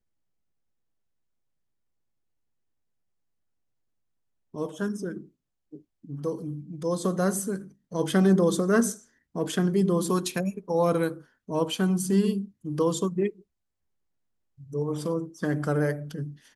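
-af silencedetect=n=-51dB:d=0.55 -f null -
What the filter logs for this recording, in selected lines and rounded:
silence_start: 0.00
silence_end: 4.54 | silence_duration: 4.54
silence_start: 13.42
silence_end: 14.58 | silence_duration: 1.16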